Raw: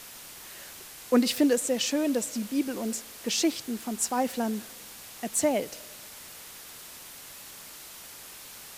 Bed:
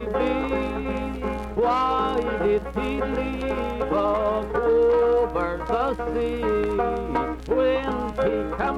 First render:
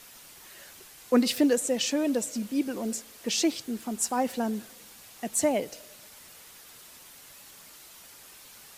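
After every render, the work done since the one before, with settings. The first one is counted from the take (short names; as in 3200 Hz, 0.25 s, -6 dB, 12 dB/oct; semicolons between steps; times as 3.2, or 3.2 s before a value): denoiser 6 dB, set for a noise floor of -46 dBFS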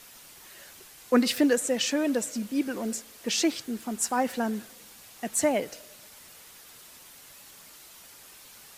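dynamic EQ 1600 Hz, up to +6 dB, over -48 dBFS, Q 1.4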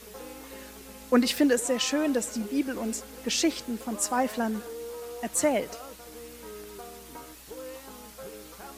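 add bed -20.5 dB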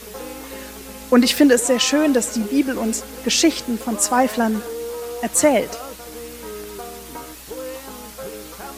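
gain +9.5 dB; limiter -3 dBFS, peak gain reduction 3 dB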